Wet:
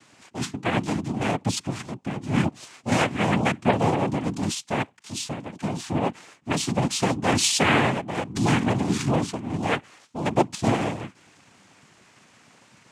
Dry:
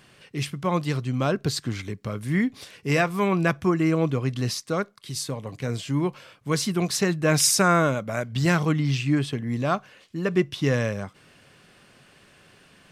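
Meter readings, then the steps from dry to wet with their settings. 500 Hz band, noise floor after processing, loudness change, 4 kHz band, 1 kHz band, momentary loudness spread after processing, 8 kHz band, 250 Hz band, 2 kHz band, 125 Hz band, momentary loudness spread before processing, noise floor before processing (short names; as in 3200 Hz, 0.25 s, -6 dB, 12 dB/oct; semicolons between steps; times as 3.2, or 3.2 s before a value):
-1.5 dB, -57 dBFS, -0.5 dB, +1.5 dB, +2.5 dB, 12 LU, -1.5 dB, 0.0 dB, +0.5 dB, -2.0 dB, 11 LU, -56 dBFS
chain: noise vocoder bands 4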